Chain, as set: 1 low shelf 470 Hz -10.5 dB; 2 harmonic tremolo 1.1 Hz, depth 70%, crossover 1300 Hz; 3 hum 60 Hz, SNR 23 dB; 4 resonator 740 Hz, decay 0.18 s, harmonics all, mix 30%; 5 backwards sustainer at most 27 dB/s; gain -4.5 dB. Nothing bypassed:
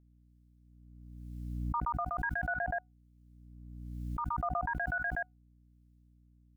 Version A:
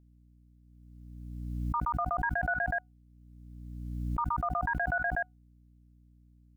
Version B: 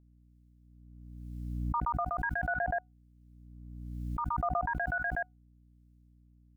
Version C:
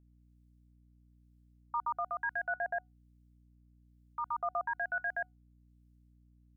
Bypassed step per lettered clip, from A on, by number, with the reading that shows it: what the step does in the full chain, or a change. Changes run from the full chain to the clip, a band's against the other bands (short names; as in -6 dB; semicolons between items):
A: 2, loudness change +3.0 LU; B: 1, 500 Hz band +1.5 dB; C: 5, momentary loudness spread change -10 LU